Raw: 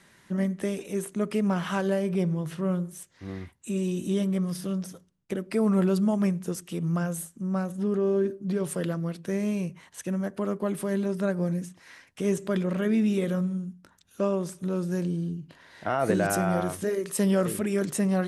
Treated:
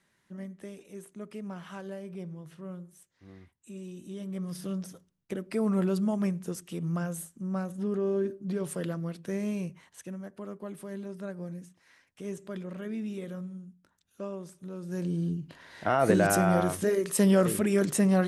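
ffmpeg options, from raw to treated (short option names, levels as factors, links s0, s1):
-af "volume=2.82,afade=t=in:st=4.18:d=0.48:silence=0.316228,afade=t=out:st=9.69:d=0.49:silence=0.421697,afade=t=in:st=14.81:d=0.51:silence=0.223872"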